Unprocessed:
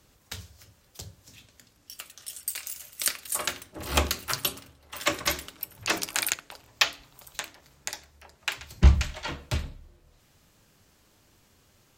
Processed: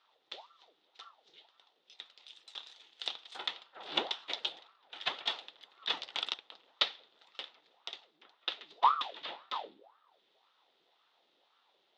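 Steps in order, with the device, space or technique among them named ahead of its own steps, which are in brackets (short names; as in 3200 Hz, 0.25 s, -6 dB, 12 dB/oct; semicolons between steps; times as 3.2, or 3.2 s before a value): voice changer toy (ring modulator with a swept carrier 750 Hz, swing 70%, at 1.9 Hz; speaker cabinet 560–3700 Hz, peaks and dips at 610 Hz -4 dB, 1100 Hz -6 dB, 1600 Hz -7 dB, 2300 Hz -6 dB, 3600 Hz +9 dB); gain -2.5 dB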